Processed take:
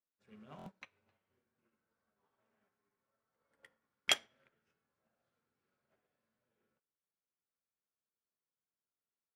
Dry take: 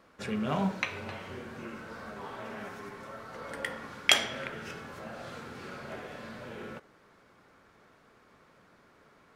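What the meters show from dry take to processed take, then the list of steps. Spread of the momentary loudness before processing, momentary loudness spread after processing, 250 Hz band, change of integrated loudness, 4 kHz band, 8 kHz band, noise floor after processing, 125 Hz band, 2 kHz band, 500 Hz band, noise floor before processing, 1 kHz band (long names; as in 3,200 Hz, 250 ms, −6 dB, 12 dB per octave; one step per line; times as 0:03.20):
16 LU, 20 LU, −24.5 dB, 0.0 dB, −8.5 dB, −8.5 dB, below −85 dBFS, below −20 dB, −12.0 dB, −17.5 dB, −62 dBFS, −16.0 dB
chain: buffer that repeats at 0:00.57, samples 1,024, times 3
expander for the loud parts 2.5 to 1, over −43 dBFS
level −5.5 dB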